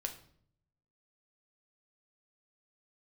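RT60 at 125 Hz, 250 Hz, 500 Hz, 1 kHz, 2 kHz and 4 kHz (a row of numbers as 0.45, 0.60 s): 1.1, 0.90, 0.65, 0.55, 0.50, 0.45 s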